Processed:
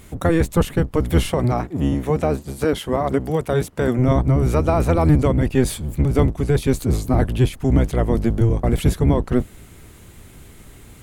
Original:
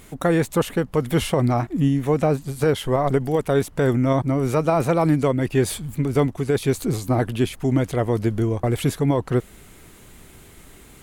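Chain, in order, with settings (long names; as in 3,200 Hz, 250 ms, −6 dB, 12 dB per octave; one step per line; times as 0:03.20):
sub-octave generator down 1 octave, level +4 dB
0:01.31–0:03.99: high-pass filter 200 Hz 6 dB per octave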